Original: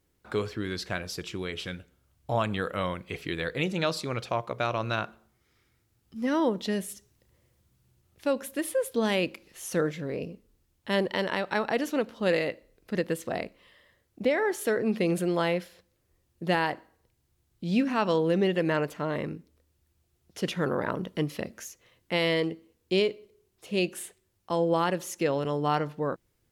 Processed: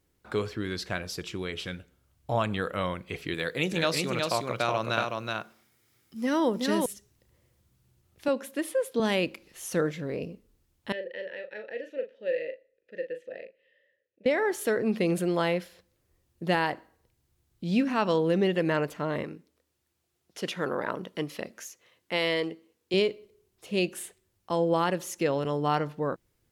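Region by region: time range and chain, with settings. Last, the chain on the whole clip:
0:03.34–0:06.86: high-pass filter 130 Hz + high-shelf EQ 5,300 Hz +8 dB + single-tap delay 372 ms −3.5 dB
0:08.28–0:09.00: high-pass filter 150 Hz 24 dB per octave + high-shelf EQ 8,400 Hz −7 dB
0:10.92–0:14.26: formant filter e + parametric band 730 Hz −8 dB 0.34 octaves + double-tracking delay 38 ms −7.5 dB
0:19.23–0:22.94: high-pass filter 340 Hz 6 dB per octave + high-shelf EQ 12,000 Hz −3.5 dB
whole clip: no processing

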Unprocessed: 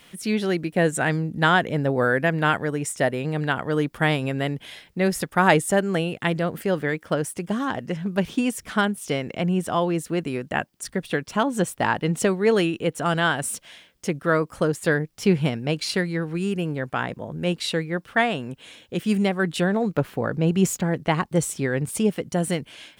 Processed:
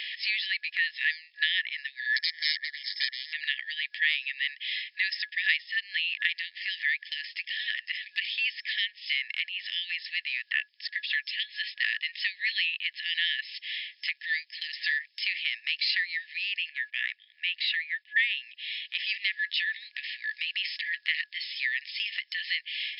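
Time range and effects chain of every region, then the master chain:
0:02.16–0:03.33: phase distortion by the signal itself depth 0.59 ms + RIAA equalisation recording + phaser with its sweep stopped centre 530 Hz, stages 8
0:16.69–0:18.37: noise gate −42 dBFS, range −15 dB + low-pass filter 3,400 Hz + one half of a high-frequency compander decoder only
whole clip: brick-wall band-pass 1,700–5,300 Hz; transient designer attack −3 dB, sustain +3 dB; multiband upward and downward compressor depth 70%; level +5.5 dB

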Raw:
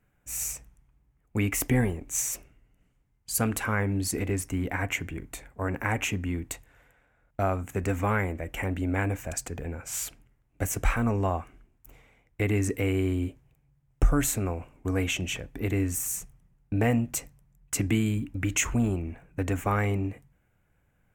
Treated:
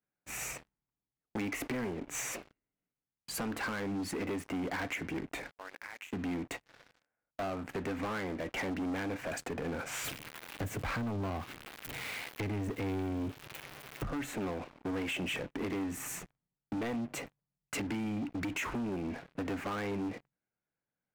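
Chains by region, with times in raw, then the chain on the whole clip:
0:05.51–0:06.13: first difference + mains-hum notches 60/120/180/240/300/360/420/480/540 Hz + downward compressor 5 to 1, threshold −48 dBFS
0:10.04–0:14.11: spike at every zero crossing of −28 dBFS + parametric band 100 Hz +14 dB 2 octaves
whole clip: three-way crossover with the lows and the highs turned down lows −19 dB, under 160 Hz, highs −20 dB, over 3,200 Hz; downward compressor 6 to 1, threshold −37 dBFS; leveller curve on the samples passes 5; level −9 dB

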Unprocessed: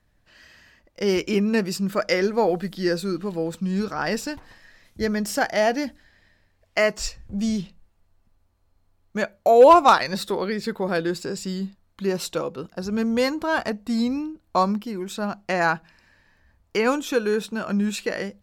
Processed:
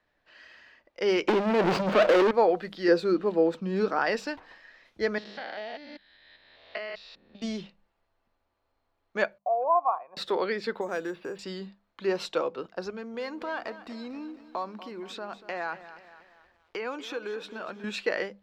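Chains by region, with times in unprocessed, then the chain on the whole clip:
0:01.28–0:02.31: running median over 25 samples + compressor whose output falls as the input rises −28 dBFS + leveller curve on the samples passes 5
0:02.88–0:03.99: parametric band 320 Hz +7 dB 2.5 octaves + one half of a high-frequency compander decoder only
0:05.18–0:07.42: spectrum averaged block by block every 200 ms + transistor ladder low-pass 4,100 Hz, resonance 75% + multiband upward and downward compressor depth 100%
0:09.38–0:10.17: formant resonators in series a + parametric band 800 Hz −5.5 dB 0.48 octaves
0:10.81–0:11.39: downward compressor 2 to 1, threshold −30 dBFS + bad sample-rate conversion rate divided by 6×, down filtered, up hold
0:12.90–0:17.84: downward compressor 3 to 1, threshold −32 dBFS + feedback echo at a low word length 238 ms, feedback 55%, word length 9 bits, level −14 dB
whole clip: three-way crossover with the lows and the highs turned down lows −16 dB, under 310 Hz, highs −21 dB, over 4,600 Hz; mains-hum notches 50/100/150/200 Hz

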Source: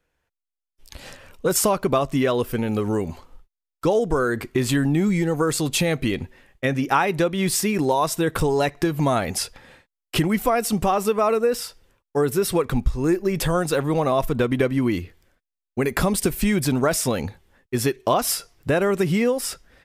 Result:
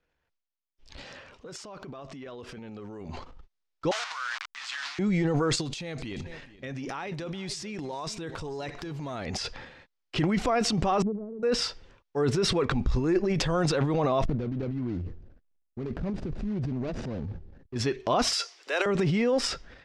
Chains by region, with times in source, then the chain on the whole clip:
0:01.05–0:03.09: high-pass filter 160 Hz 6 dB per octave + downward compressor 16 to 1, threshold −33 dBFS
0:03.91–0:04.99: hold until the input has moved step −26 dBFS + inverse Chebyshev high-pass filter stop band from 410 Hz, stop band 50 dB
0:05.55–0:09.26: high-shelf EQ 5,300 Hz +11 dB + downward compressor 5 to 1, threshold −28 dBFS + single-tap delay 432 ms −20 dB
0:11.02–0:11.43: inverse Chebyshev band-stop filter 1,700–7,900 Hz, stop band 80 dB + downward compressor 4 to 1, threshold −31 dBFS
0:14.25–0:17.76: running median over 41 samples + downward compressor 2 to 1, threshold −38 dBFS + low-shelf EQ 310 Hz +9 dB
0:18.33–0:18.86: de-essing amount 30% + Butterworth high-pass 340 Hz + spectral tilt +4 dB per octave
whole clip: low-pass filter 5,800 Hz 24 dB per octave; transient designer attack −3 dB, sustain +11 dB; level −5 dB

